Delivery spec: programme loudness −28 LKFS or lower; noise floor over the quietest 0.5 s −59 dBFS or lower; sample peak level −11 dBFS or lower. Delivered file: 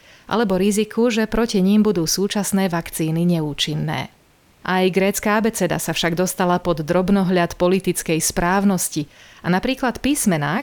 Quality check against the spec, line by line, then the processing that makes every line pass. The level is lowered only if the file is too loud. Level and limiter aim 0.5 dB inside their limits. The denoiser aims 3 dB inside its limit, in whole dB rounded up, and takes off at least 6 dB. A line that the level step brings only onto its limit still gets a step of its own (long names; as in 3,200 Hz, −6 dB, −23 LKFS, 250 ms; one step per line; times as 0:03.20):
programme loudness −19.5 LKFS: out of spec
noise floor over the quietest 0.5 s −54 dBFS: out of spec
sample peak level −7.0 dBFS: out of spec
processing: level −9 dB